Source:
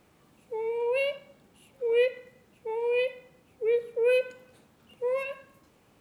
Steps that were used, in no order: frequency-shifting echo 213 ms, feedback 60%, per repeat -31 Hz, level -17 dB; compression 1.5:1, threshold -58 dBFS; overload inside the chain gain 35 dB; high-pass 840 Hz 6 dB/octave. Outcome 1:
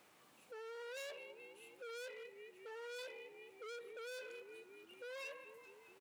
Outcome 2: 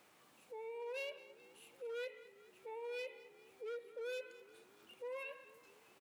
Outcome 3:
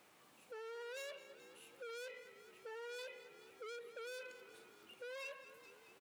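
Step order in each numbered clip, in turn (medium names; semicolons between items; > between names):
frequency-shifting echo > overload inside the chain > compression > high-pass; compression > overload inside the chain > high-pass > frequency-shifting echo; overload inside the chain > high-pass > frequency-shifting echo > compression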